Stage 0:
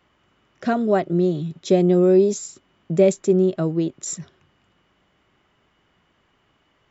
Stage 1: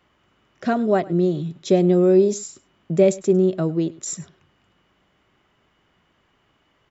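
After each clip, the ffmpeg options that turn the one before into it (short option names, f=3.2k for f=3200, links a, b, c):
-af "aecho=1:1:102:0.0891"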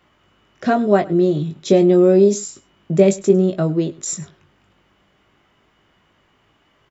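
-filter_complex "[0:a]asplit=2[a][b];[b]adelay=20,volume=-7dB[c];[a][c]amix=inputs=2:normalize=0,volume=3.5dB"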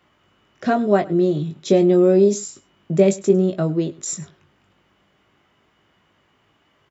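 -af "highpass=60,volume=-2dB"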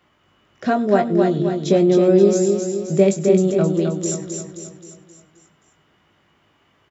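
-af "aecho=1:1:264|528|792|1056|1320|1584:0.562|0.281|0.141|0.0703|0.0351|0.0176"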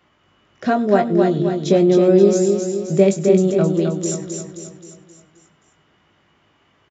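-af "aresample=16000,aresample=44100,volume=1dB"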